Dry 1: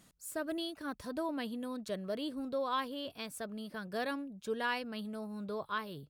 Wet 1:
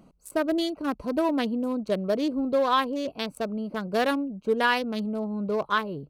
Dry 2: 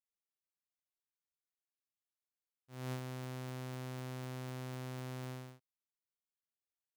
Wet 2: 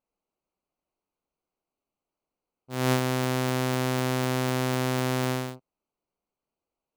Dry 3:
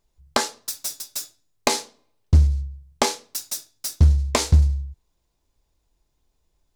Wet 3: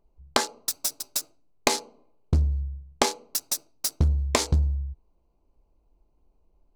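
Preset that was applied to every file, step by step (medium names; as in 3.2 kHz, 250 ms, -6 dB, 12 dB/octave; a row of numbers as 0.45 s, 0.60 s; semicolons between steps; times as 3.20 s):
local Wiener filter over 25 samples; peaking EQ 100 Hz -9.5 dB 0.96 oct; compression 2:1, threshold -32 dBFS; normalise loudness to -27 LUFS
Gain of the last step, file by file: +13.5 dB, +20.0 dB, +6.5 dB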